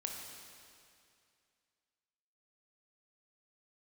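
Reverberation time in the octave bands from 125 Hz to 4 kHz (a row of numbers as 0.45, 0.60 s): 2.4, 2.4, 2.4, 2.4, 2.4, 2.3 s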